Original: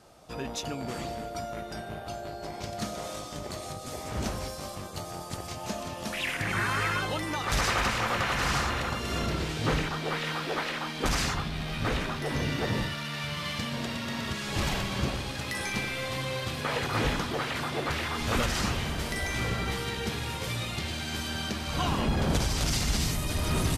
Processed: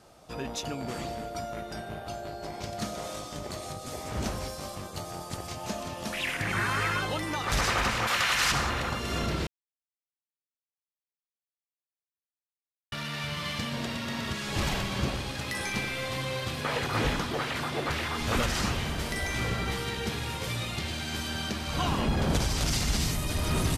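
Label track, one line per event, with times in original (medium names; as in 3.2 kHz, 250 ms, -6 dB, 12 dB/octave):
8.070000	8.520000	tilt shelf lows -8.5 dB, about 1.1 kHz
9.470000	12.920000	mute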